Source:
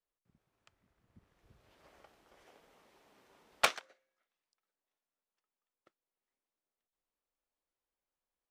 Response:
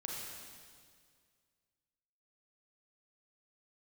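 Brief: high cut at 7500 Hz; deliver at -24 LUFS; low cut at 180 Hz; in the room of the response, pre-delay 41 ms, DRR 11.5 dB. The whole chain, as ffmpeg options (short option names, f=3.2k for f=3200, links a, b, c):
-filter_complex "[0:a]highpass=180,lowpass=7.5k,asplit=2[a][b];[1:a]atrim=start_sample=2205,adelay=41[c];[b][c]afir=irnorm=-1:irlink=0,volume=-12dB[d];[a][d]amix=inputs=2:normalize=0,volume=11dB"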